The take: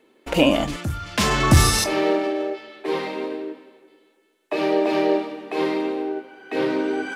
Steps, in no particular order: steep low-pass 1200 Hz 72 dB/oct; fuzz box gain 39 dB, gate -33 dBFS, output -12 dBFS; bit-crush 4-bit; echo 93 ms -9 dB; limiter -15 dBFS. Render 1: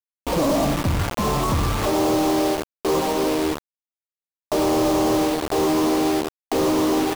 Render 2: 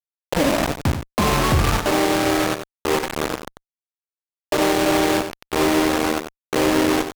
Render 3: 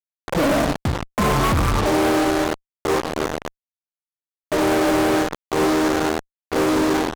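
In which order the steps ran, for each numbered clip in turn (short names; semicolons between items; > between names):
echo > fuzz box > steep low-pass > bit-crush > limiter; steep low-pass > limiter > bit-crush > fuzz box > echo; echo > bit-crush > steep low-pass > fuzz box > limiter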